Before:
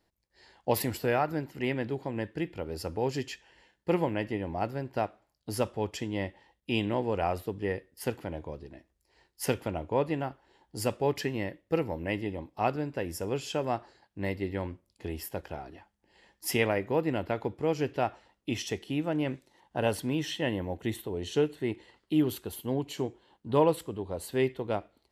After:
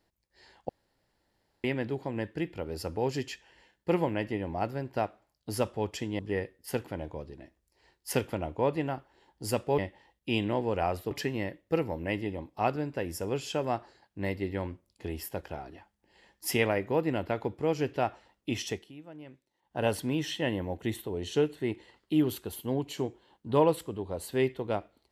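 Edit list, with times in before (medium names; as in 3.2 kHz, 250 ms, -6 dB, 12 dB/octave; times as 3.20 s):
0.69–1.64 s: room tone
6.19–7.52 s: move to 11.11 s
18.70–19.84 s: dip -17 dB, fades 0.22 s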